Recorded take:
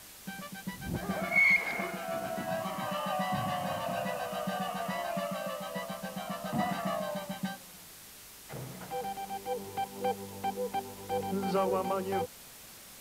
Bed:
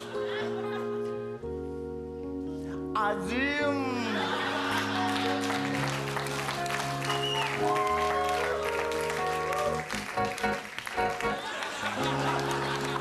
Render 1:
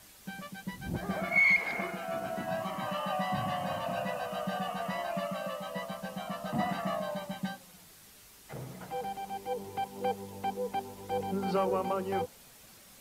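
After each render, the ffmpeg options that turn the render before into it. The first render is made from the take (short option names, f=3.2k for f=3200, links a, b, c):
-af "afftdn=nr=6:nf=-51"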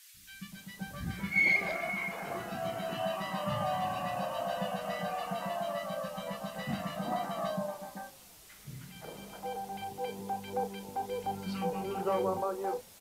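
-filter_complex "[0:a]asplit=2[a][b];[b]adelay=35,volume=-10.5dB[c];[a][c]amix=inputs=2:normalize=0,acrossover=split=260|1600[d][e][f];[d]adelay=140[g];[e]adelay=520[h];[g][h][f]amix=inputs=3:normalize=0"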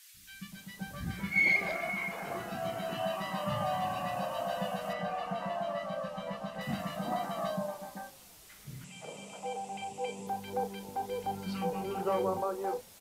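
-filter_complex "[0:a]asettb=1/sr,asplit=3[a][b][c];[a]atrim=end=4.934[d];[b]atrim=start=4.93:end=6.61,asetpts=PTS-STARTPTS,afade=t=in:d=0.004:c=qsin,afade=t=out:st=1.676:d=0.004:c=qsin,aemphasis=mode=reproduction:type=50fm[e];[c]atrim=start=6.606[f];[d][e]acrossfade=d=0.004:c1=hsin:c2=qsin[g];[g][f]acrossfade=d=0.004:c1=qsin:c2=hsin,asettb=1/sr,asplit=3[h][i][j];[h]atrim=end=8.844[k];[i]atrim=start=8.84:end=10.27,asetpts=PTS-STARTPTS,afade=t=in:d=0.004:c=qsin,afade=t=out:st=1.426:d=0.004:c=qsin,highpass=130,equalizer=f=340:t=q:w=4:g=-6,equalizer=f=570:t=q:w=4:g=4,equalizer=f=1.6k:t=q:w=4:g=-9,equalizer=f=2.6k:t=q:w=4:g=9,equalizer=f=4.2k:t=q:w=4:g=-5,equalizer=f=7.6k:t=q:w=4:g=10,lowpass=f=9.7k:w=0.5412,lowpass=f=9.7k:w=1.3066[l];[j]atrim=start=10.266[m];[k][l]acrossfade=d=0.004:c1=hsin:c2=qsin[n];[n][m]acrossfade=d=0.004:c1=qsin:c2=hsin"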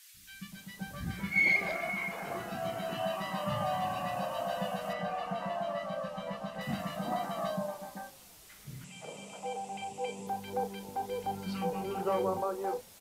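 -af anull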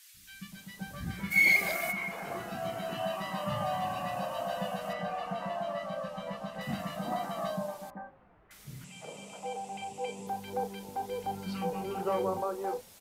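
-filter_complex "[0:a]asplit=3[a][b][c];[a]afade=t=out:st=1.3:d=0.02[d];[b]aemphasis=mode=production:type=75kf,afade=t=in:st=1.3:d=0.02,afade=t=out:st=1.91:d=0.02[e];[c]afade=t=in:st=1.91:d=0.02[f];[d][e][f]amix=inputs=3:normalize=0,asettb=1/sr,asplit=3[g][h][i];[g]atrim=end=7.904[j];[h]atrim=start=7.9:end=8.51,asetpts=PTS-STARTPTS,afade=t=in:d=0.004:c=qsin,afade=t=out:st=0.606:d=0.004:c=qsin,lowpass=f=1.7k:w=0.5412,lowpass=f=1.7k:w=1.3066[k];[i]atrim=start=8.506[l];[j][k]acrossfade=d=0.004:c1=hsin:c2=qsin[m];[m][l]acrossfade=d=0.004:c1=qsin:c2=hsin"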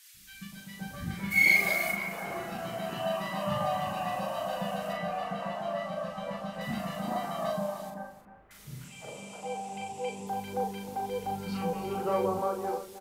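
-filter_complex "[0:a]asplit=2[a][b];[b]adelay=40,volume=-4dB[c];[a][c]amix=inputs=2:normalize=0,aecho=1:1:309:0.237"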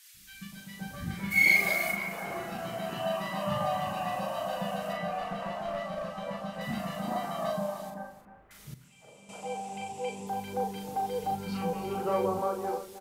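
-filter_complex "[0:a]asettb=1/sr,asplit=3[a][b][c];[a]atrim=end=5.194[d];[b]atrim=start=5.19:end=6.26,asetpts=PTS-STARTPTS,afade=t=in:d=0.004:c=qsin,afade=t=out:st=1.066:d=0.004:c=qsin,aeval=exprs='clip(val(0),-1,0.0251)':c=same[e];[c]atrim=start=6.256[f];[d][e]acrossfade=d=0.004:c1=hsin:c2=qsin[g];[g][f]acrossfade=d=0.004:c1=qsin:c2=hsin,asettb=1/sr,asplit=3[h][i][j];[h]atrim=end=10.754[k];[i]atrim=start=10.75:end=11.35,asetpts=PTS-STARTPTS,afade=t=in:d=0.004:c=qsin,afade=t=out:st=0.596:d=0.004:c=qsin,aecho=1:1:6.6:0.66,atrim=end_sample=26460[l];[j]atrim=start=11.346[m];[k][l]acrossfade=d=0.004:c1=hsin:c2=qsin[n];[n][m]acrossfade=d=0.004:c1=qsin:c2=hsin,asplit=3[o][p][q];[o]atrim=end=8.742[r];[p]atrim=start=8.738:end=9.292,asetpts=PTS-STARTPTS,volume=-11dB[s];[q]atrim=start=9.288[t];[r][s]acrossfade=d=0.004:c1=hsin:c2=hsin[u];[u][t]acrossfade=d=0.004:c1=hsin:c2=hsin"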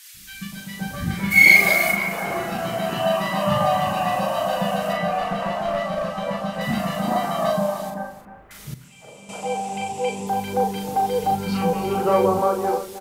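-af "volume=10.5dB"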